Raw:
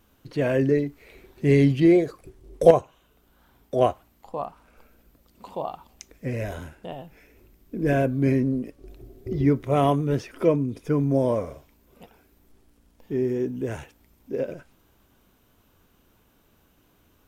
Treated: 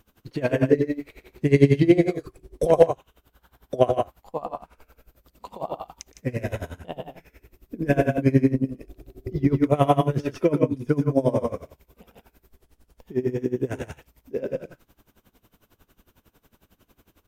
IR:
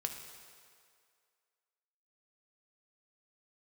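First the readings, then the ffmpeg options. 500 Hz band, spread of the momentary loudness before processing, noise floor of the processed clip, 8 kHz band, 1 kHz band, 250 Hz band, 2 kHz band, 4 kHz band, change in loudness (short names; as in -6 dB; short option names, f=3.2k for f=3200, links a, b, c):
+0.5 dB, 19 LU, -72 dBFS, n/a, +1.0 dB, +0.5 dB, +1.0 dB, +1.0 dB, +0.5 dB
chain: -af "aecho=1:1:119.5|157.4:0.562|0.398,aeval=exprs='val(0)*pow(10,-21*(0.5-0.5*cos(2*PI*11*n/s))/20)':c=same,volume=5dB"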